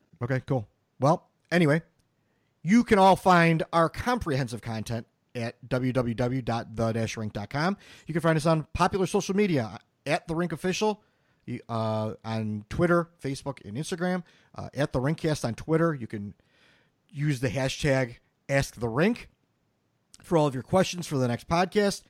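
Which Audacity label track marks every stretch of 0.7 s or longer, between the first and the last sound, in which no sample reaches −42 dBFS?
1.810000	2.650000	silence
16.320000	17.140000	silence
19.240000	20.140000	silence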